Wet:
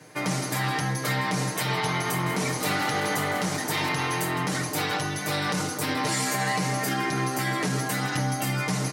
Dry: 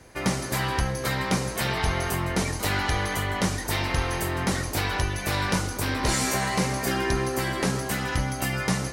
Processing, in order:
high-pass filter 120 Hz 24 dB per octave
comb filter 6.6 ms, depth 90%
brickwall limiter −17 dBFS, peak gain reduction 8.5 dB
0:01.88–0:03.89: echo with shifted repeats 193 ms, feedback 59%, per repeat +66 Hz, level −11 dB

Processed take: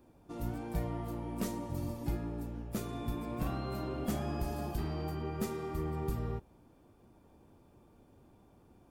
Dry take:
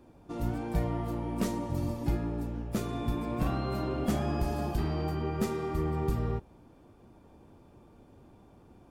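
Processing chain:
high-shelf EQ 10,000 Hz +9.5 dB
level −5.5 dB

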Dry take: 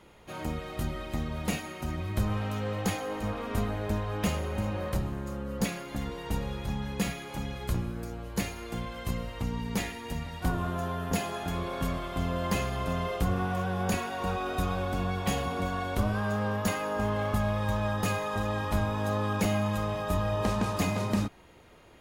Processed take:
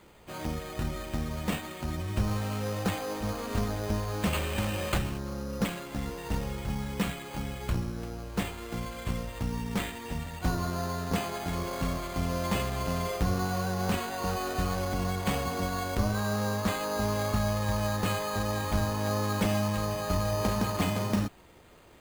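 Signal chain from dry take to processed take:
0:04.33–0:05.18: flat-topped bell 5,800 Hz +14 dB 2.6 octaves
bad sample-rate conversion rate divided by 8×, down none, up hold

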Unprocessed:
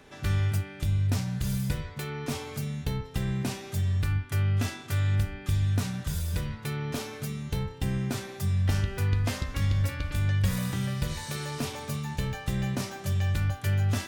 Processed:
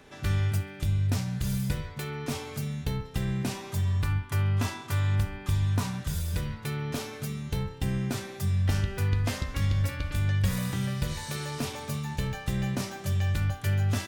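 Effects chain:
0:03.55–0:05.99: parametric band 1,000 Hz +11 dB 0.35 octaves
repeating echo 67 ms, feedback 39%, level −22 dB

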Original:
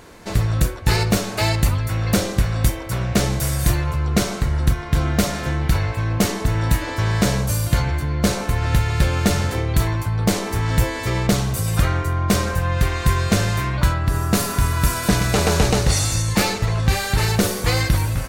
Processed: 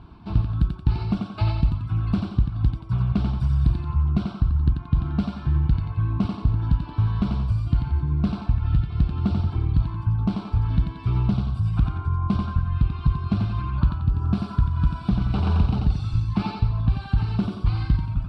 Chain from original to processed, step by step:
high-pass filter 44 Hz
reverb reduction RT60 1.5 s
low-pass filter 6,900 Hz 24 dB per octave
spectral tilt −3.5 dB per octave
downward compressor 4 to 1, threshold −11 dBFS, peak gain reduction 10.5 dB
phaser with its sweep stopped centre 1,900 Hz, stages 6
on a send: feedback echo with a high-pass in the loop 89 ms, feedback 46%, high-pass 190 Hz, level −3 dB
on the sum: highs frequency-modulated by the lows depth 0.15 ms
level −5.5 dB

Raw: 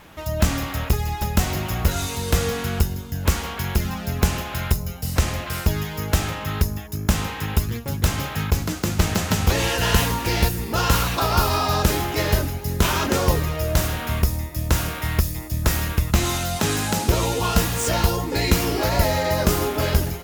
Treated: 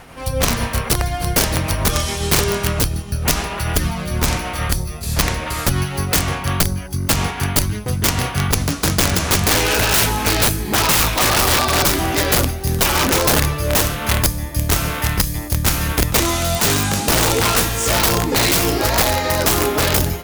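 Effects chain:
pitch glide at a constant tempo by −3 semitones ending unshifted
wrap-around overflow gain 16 dB
level +7 dB

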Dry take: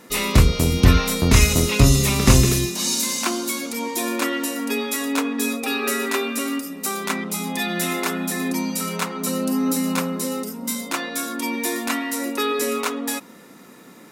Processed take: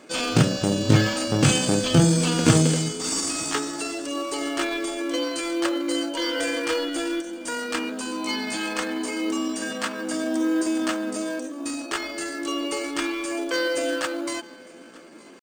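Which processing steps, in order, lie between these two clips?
hum removal 175.6 Hz, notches 6
on a send: feedback echo with a high-pass in the loop 839 ms, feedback 16%, high-pass 160 Hz, level −23 dB
on the sum: speed change +22%
brick-wall band-pass 100–9,400 Hz
tempo change 0.75×
in parallel at −12 dB: decimation without filtering 13×
on the sum: level −3 dB

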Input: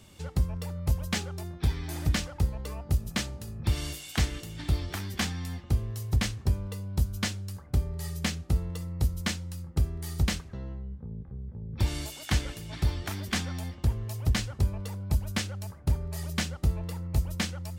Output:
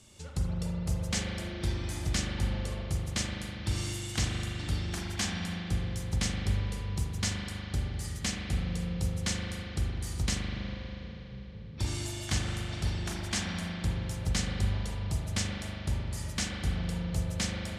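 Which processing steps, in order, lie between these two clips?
low-pass filter 12,000 Hz 24 dB per octave
parametric band 7,100 Hz +9 dB 1.5 octaves
spring reverb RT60 3.5 s, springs 40 ms, chirp 40 ms, DRR −2 dB
level −6 dB

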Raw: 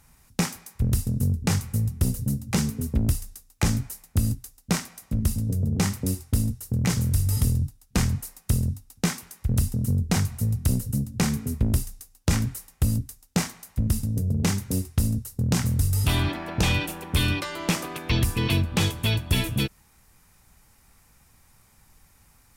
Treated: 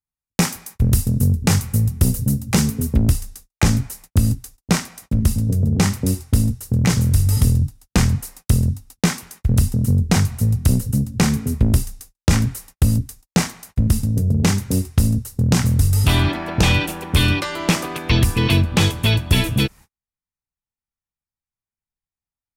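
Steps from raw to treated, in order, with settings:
noise gate −47 dBFS, range −45 dB
high-shelf EQ 9,600 Hz +2.5 dB, from 0:02.96 −5 dB
level +7 dB

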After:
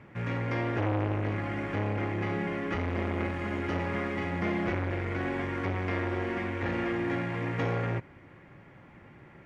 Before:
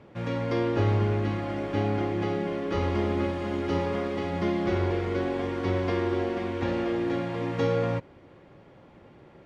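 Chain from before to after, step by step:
octave-band graphic EQ 125/500/2,000/4,000 Hz +3/−6/+9/−8 dB
saturating transformer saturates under 690 Hz

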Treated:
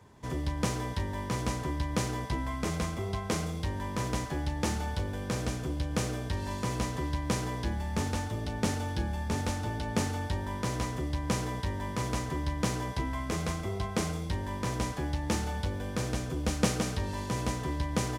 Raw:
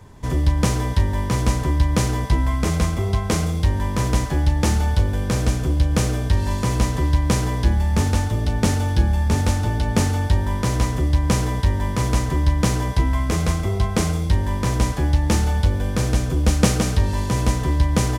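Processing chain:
high-pass filter 160 Hz 6 dB per octave
high-shelf EQ 8,400 Hz −4 dB
level −8 dB

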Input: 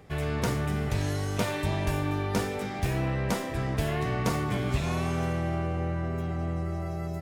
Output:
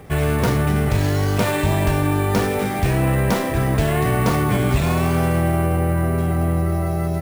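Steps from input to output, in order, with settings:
in parallel at +2 dB: brickwall limiter −22.5 dBFS, peak gain reduction 8.5 dB
on the sum: high-shelf EQ 4,400 Hz −5 dB
sample-rate reduction 11,000 Hz, jitter 0%
level +4.5 dB

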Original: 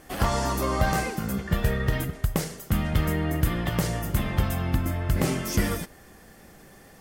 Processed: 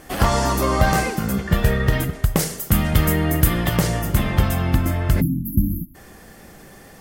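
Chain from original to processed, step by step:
0:02.39–0:03.77: high-shelf EQ 7,300 Hz +9.5 dB
0:05.21–0:05.95: time-frequency box erased 330–11,000 Hz
level +6.5 dB

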